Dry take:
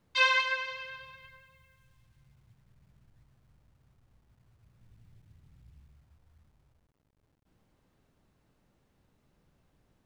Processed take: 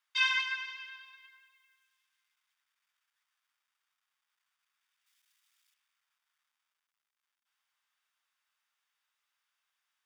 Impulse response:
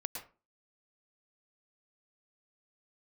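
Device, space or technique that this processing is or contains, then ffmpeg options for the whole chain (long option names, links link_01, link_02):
headphones lying on a table: -filter_complex "[0:a]highpass=frequency=1200:width=0.5412,highpass=frequency=1200:width=1.3066,equalizer=frequency=3900:width_type=o:width=0.54:gain=6,bandreject=frequency=4100:width=6.1,asettb=1/sr,asplit=3[link_01][link_02][link_03];[link_01]atrim=end=5.064[link_04];[link_02]atrim=start=5.06:end=5.74,asetpts=PTS-STARTPTS,afade=type=in:duration=0.004:curve=qsin,afade=type=out:start_time=0.676:duration=0.004:curve=qsin,highshelf=frequency=3400:gain=11.5[link_05];[link_03]atrim=start=5.736[link_06];[link_04][link_05]acrossfade=duration=0.004:curve1=hsin:curve2=qsin[link_07];[link_07][link_06]acrossfade=duration=0.004:curve1=qsin:curve2=hsin,volume=-3.5dB"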